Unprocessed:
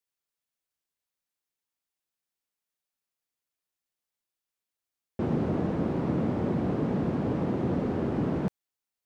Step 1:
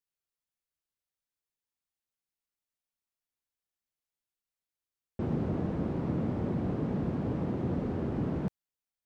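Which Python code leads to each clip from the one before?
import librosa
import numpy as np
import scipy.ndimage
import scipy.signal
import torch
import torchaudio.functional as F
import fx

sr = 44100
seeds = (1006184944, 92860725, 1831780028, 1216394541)

y = fx.low_shelf(x, sr, hz=120.0, db=9.0)
y = y * librosa.db_to_amplitude(-6.0)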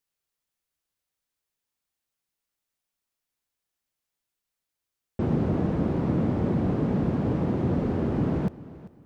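y = fx.echo_feedback(x, sr, ms=393, feedback_pct=30, wet_db=-18.0)
y = y * librosa.db_to_amplitude(6.5)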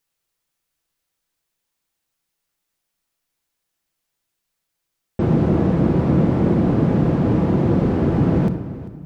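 y = fx.room_shoebox(x, sr, seeds[0], volume_m3=1400.0, walls='mixed', distance_m=0.73)
y = y * librosa.db_to_amplitude(7.0)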